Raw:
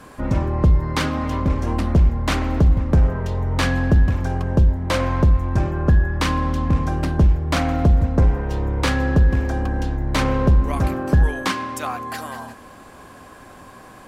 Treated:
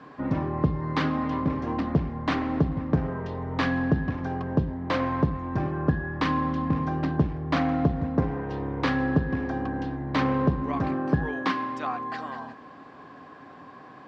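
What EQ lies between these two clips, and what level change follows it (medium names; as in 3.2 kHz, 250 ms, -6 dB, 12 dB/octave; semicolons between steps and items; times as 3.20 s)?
cabinet simulation 110–4800 Hz, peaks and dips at 150 Hz +8 dB, 280 Hz +9 dB, 430 Hz +5 dB, 750 Hz +5 dB, 1.1 kHz +6 dB, 1.8 kHz +5 dB; -8.5 dB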